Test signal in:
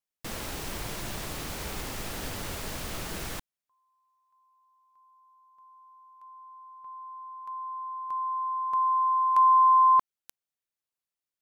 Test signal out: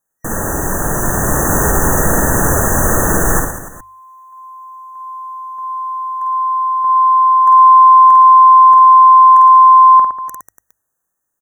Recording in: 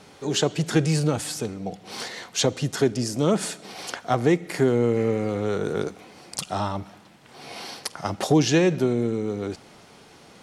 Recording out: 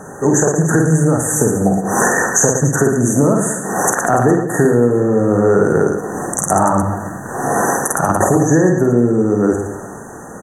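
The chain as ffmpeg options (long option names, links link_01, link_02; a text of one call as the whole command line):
ffmpeg -i in.wav -af "afftfilt=real='re*(1-between(b*sr/4096,1900,5900))':imag='im*(1-between(b*sr/4096,1900,5900))':win_size=4096:overlap=0.75,dynaudnorm=framelen=250:gausssize=13:maxgain=10dB,bandreject=frequency=50:width_type=h:width=6,bandreject=frequency=100:width_type=h:width=6,acompressor=threshold=-25dB:ratio=20:attack=14:release=718:knee=1:detection=peak,aecho=1:1:50|112.5|190.6|288.3|410.4:0.631|0.398|0.251|0.158|0.1,alimiter=level_in=17dB:limit=-1dB:release=50:level=0:latency=1,volume=-1dB" out.wav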